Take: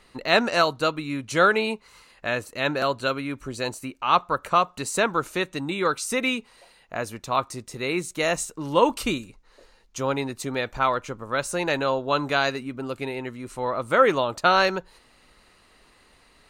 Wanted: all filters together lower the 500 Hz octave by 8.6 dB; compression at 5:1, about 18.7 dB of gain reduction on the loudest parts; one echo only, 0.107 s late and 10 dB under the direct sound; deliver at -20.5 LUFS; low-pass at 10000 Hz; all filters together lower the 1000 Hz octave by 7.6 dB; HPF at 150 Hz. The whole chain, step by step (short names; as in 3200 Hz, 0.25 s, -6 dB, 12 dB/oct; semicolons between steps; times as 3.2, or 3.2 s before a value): HPF 150 Hz; LPF 10000 Hz; bell 500 Hz -8 dB; bell 1000 Hz -8.5 dB; compressor 5:1, threshold -41 dBFS; echo 0.107 s -10 dB; gain +22.5 dB